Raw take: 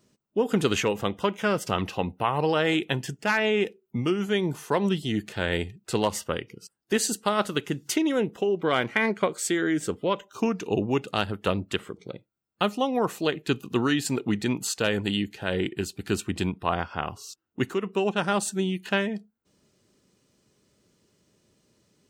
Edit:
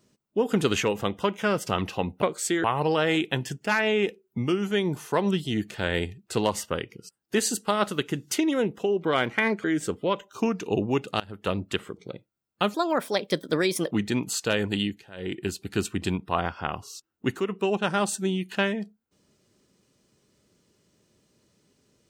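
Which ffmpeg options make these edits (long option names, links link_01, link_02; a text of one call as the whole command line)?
ffmpeg -i in.wav -filter_complex "[0:a]asplit=9[link_01][link_02][link_03][link_04][link_05][link_06][link_07][link_08][link_09];[link_01]atrim=end=2.222[link_10];[link_02]atrim=start=9.218:end=9.642[link_11];[link_03]atrim=start=2.218:end=9.222[link_12];[link_04]atrim=start=9.638:end=11.2,asetpts=PTS-STARTPTS,afade=type=out:start_time=1.558:duration=0.004:curve=hsin:silence=0.0707946[link_13];[link_05]atrim=start=11.2:end=12.744,asetpts=PTS-STARTPTS,afade=type=in:duration=0.53:curve=qsin:silence=0.0707946[link_14];[link_06]atrim=start=12.74:end=14.25,asetpts=PTS-STARTPTS,asetrate=56889,aresample=44100[link_15];[link_07]atrim=start=14.246:end=15.43,asetpts=PTS-STARTPTS,afade=type=out:start_time=0.924:duration=0.26:silence=0.16788[link_16];[link_08]atrim=start=15.43:end=15.49,asetpts=PTS-STARTPTS,volume=-15.5dB[link_17];[link_09]atrim=start=15.49,asetpts=PTS-STARTPTS,afade=type=in:duration=0.26:silence=0.16788[link_18];[link_10][link_11]acrossfade=duration=0.004:curve1=hsin:curve2=hsin[link_19];[link_19][link_12]acrossfade=duration=0.004:curve1=hsin:curve2=hsin[link_20];[link_13][link_14]concat=n=2:v=0:a=1[link_21];[link_20][link_21]acrossfade=duration=0.004:curve1=hsin:curve2=hsin[link_22];[link_22][link_15]acrossfade=duration=0.004:curve1=hsin:curve2=hsin[link_23];[link_16][link_17][link_18]concat=n=3:v=0:a=1[link_24];[link_23][link_24]acrossfade=duration=0.004:curve1=hsin:curve2=hsin" out.wav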